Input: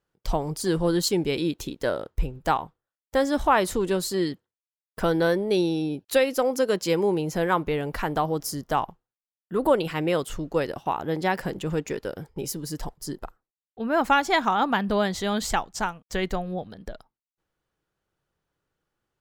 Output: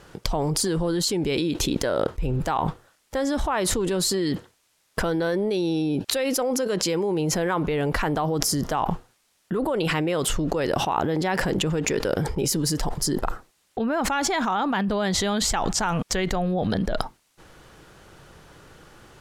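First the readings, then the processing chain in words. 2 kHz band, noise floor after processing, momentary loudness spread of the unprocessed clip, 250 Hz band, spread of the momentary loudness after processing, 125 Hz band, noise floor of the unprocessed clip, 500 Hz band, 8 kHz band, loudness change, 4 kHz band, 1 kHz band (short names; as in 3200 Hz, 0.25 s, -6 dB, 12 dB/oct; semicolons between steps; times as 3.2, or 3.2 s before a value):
0.0 dB, -67 dBFS, 12 LU, +2.5 dB, 5 LU, +4.5 dB, under -85 dBFS, -0.5 dB, +8.5 dB, +1.0 dB, +5.0 dB, -1.0 dB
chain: LPF 11000 Hz 12 dB/oct; fast leveller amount 100%; gain -8 dB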